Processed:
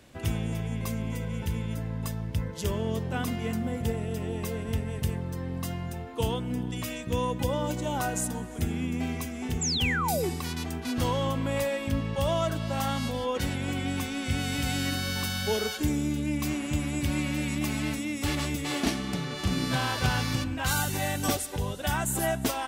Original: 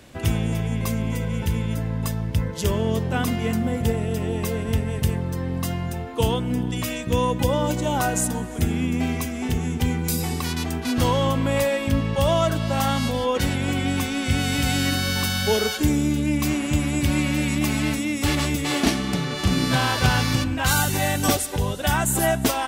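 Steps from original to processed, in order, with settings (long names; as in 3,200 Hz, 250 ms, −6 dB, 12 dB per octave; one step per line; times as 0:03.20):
sound drawn into the spectrogram fall, 0:09.61–0:10.30, 320–7,900 Hz −22 dBFS
level −7 dB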